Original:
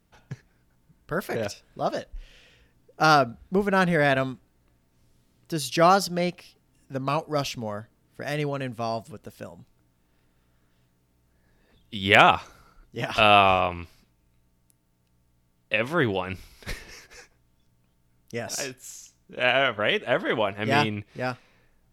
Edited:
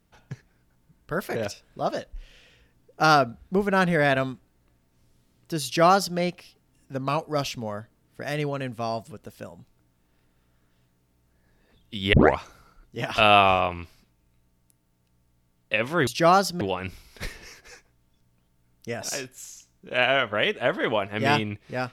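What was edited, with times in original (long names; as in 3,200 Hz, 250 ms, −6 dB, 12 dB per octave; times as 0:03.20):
0:05.64–0:06.18: duplicate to 0:16.07
0:12.13: tape start 0.25 s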